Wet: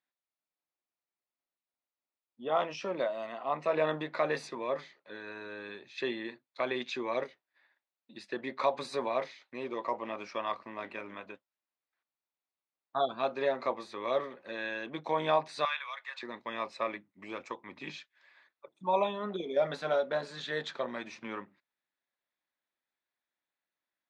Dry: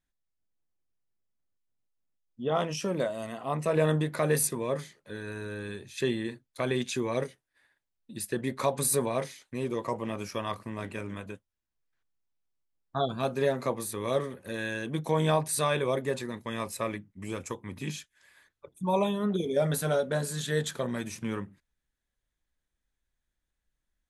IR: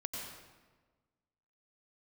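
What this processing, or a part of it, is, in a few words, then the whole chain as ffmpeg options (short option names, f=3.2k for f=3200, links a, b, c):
phone earpiece: -filter_complex "[0:a]highpass=440,equalizer=f=450:t=q:w=4:g=-6,equalizer=f=1.6k:t=q:w=4:g=-4,equalizer=f=3.1k:t=q:w=4:g=-6,lowpass=f=4.1k:w=0.5412,lowpass=f=4.1k:w=1.3066,asettb=1/sr,asplit=3[a][b][c];[a]atrim=end=15.654[d];[b]atrim=start=15.65:end=16.23,asetpts=PTS-STARTPTS,afade=t=in:d=0.004:c=qsin,afade=t=out:st=0.576:d=0.004:c=qsin,highpass=f=1.2k:w=0.5412,highpass=f=1.2k:w=1.3066[e];[c]atrim=start=16.226[f];[d][e]acrossfade=d=0.004:c1=hsin:c2=qsin[g];[g][f]acrossfade=d=0.004:c1=qsin:c2=hsin,volume=1.5dB"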